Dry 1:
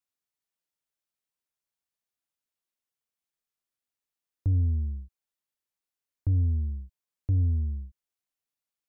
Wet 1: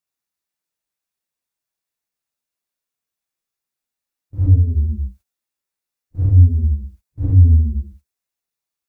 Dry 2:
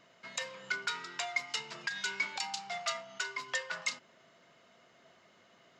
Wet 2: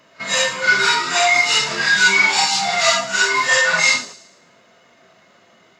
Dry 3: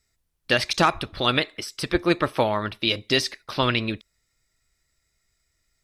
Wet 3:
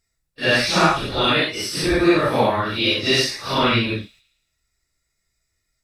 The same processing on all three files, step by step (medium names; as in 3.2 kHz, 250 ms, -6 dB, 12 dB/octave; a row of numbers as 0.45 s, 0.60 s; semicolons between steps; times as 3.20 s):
phase randomisation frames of 200 ms; band-stop 3.1 kHz, Q 15; gate -56 dBFS, range -11 dB; in parallel at +1 dB: compression 10:1, threshold -32 dBFS; on the sum: short-mantissa float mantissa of 8-bit; feedback echo behind a high-pass 112 ms, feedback 42%, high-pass 5.1 kHz, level -12 dB; peak normalisation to -2 dBFS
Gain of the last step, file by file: +9.0 dB, +15.5 dB, +3.0 dB